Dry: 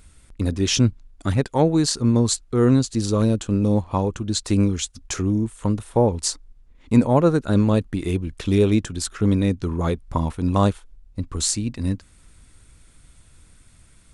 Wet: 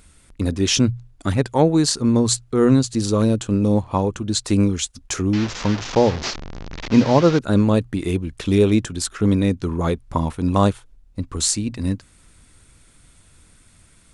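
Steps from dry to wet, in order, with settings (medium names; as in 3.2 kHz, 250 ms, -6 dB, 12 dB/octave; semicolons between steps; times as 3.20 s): 5.33–7.39 s: one-bit delta coder 32 kbps, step -24 dBFS; bass shelf 69 Hz -6.5 dB; hum notches 60/120 Hz; trim +2.5 dB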